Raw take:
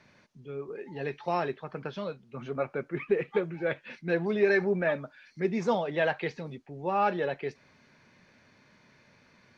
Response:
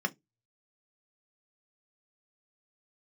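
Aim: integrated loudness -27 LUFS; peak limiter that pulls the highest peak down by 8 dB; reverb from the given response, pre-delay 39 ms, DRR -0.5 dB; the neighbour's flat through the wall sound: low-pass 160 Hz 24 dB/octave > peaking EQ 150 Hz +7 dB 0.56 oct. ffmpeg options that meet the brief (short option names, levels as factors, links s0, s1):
-filter_complex "[0:a]alimiter=limit=0.0841:level=0:latency=1,asplit=2[s0][s1];[1:a]atrim=start_sample=2205,adelay=39[s2];[s1][s2]afir=irnorm=-1:irlink=0,volume=0.501[s3];[s0][s3]amix=inputs=2:normalize=0,lowpass=f=160:w=0.5412,lowpass=f=160:w=1.3066,equalizer=f=150:t=o:w=0.56:g=7,volume=3.35"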